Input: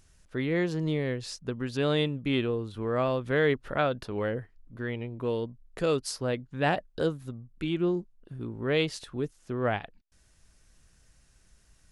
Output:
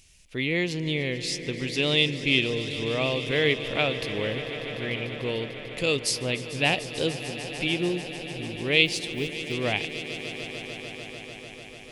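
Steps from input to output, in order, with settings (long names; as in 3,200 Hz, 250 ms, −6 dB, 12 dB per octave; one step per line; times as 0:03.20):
0:08.85–0:09.53: one scale factor per block 7 bits
high shelf with overshoot 1,900 Hz +8 dB, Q 3
echo that builds up and dies away 148 ms, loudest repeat 5, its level −16 dB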